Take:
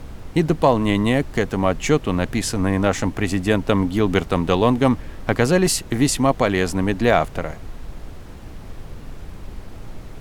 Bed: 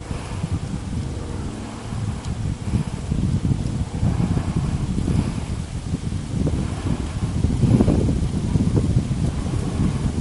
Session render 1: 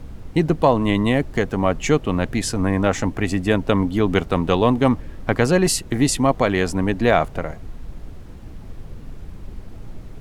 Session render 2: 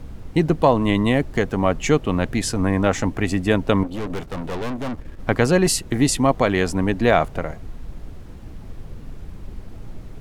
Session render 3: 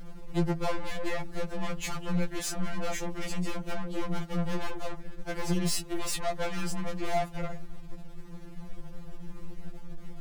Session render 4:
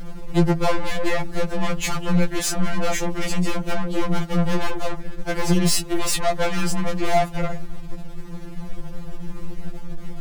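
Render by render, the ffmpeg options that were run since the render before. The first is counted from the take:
-af "afftdn=nr=6:nf=-37"
-filter_complex "[0:a]asettb=1/sr,asplit=3[a][b][c];[a]atrim=end=3.834[d];[b]atrim=start=3.83:end=5.2,asetpts=PTS-STARTPTS,afade=t=in:d=0.004:c=qsin,afade=t=out:st=1.366:d=0.004:c=qsin,aeval=exprs='(tanh(17.8*val(0)+0.6)-tanh(0.6))/17.8':c=same[e];[c]atrim=start=5.196[f];[d][e]acrossfade=d=0.004:c1=hsin:c2=qsin[g];[g][f]acrossfade=d=0.004:c1=qsin:c2=hsin"
-af "aeval=exprs='(tanh(22.4*val(0)+0.45)-tanh(0.45))/22.4':c=same,afftfilt=real='re*2.83*eq(mod(b,8),0)':imag='im*2.83*eq(mod(b,8),0)':win_size=2048:overlap=0.75"
-af "volume=10dB"

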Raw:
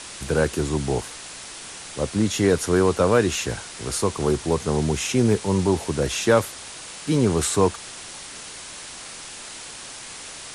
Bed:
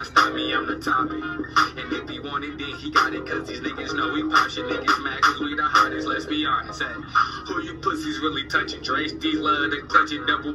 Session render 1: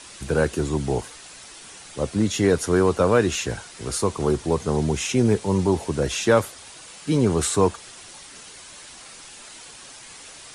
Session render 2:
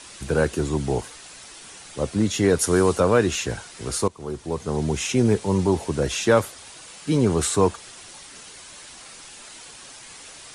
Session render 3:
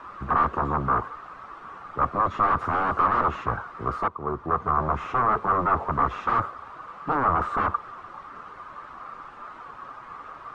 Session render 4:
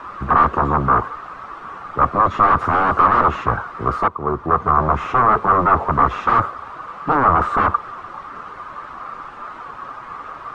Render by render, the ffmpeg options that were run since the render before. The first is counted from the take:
-af "afftdn=nr=7:nf=-38"
-filter_complex "[0:a]asettb=1/sr,asplit=3[a][b][c];[a]atrim=end=2.594[d];[b]atrim=start=2.59:end=3,asetpts=PTS-STARTPTS,afade=t=in:d=0.004:c=qsin,afade=t=out:st=0.406:d=0.004:c=qsin,highshelf=f=5.9k:g=11[e];[c]atrim=start=2.996[f];[d][e]acrossfade=d=0.004:c1=hsin:c2=qsin[g];[g][f]acrossfade=d=0.004:c1=qsin:c2=hsin,asplit=2[h][i];[h]atrim=end=4.08,asetpts=PTS-STARTPTS,afade=t=out:st=4.076:d=0.004:c=hsin:silence=0.125893[j];[i]atrim=start=4.08,asetpts=PTS-STARTPTS,afade=t=in:d=0.95:silence=0.125893[k];[j][k]concat=n=2:v=0:a=1"
-af "aeval=exprs='0.0668*(abs(mod(val(0)/0.0668+3,4)-2)-1)':c=same,lowpass=f=1.2k:t=q:w=8.4"
-af "volume=8dB"

